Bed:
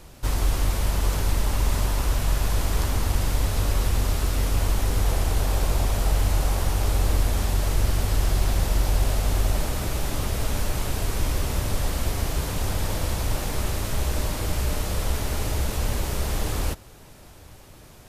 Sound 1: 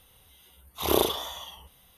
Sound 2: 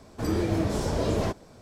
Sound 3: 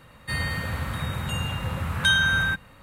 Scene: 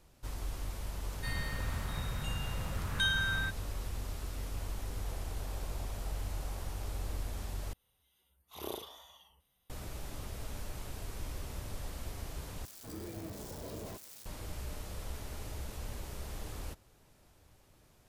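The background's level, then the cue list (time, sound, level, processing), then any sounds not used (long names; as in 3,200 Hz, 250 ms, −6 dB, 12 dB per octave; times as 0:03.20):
bed −16.5 dB
0:00.95: mix in 3 −11.5 dB + parametric band 3,900 Hz +4 dB 0.22 octaves
0:07.73: overwrite with 1 −18 dB
0:12.65: overwrite with 2 −18 dB + spike at every zero crossing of −21.5 dBFS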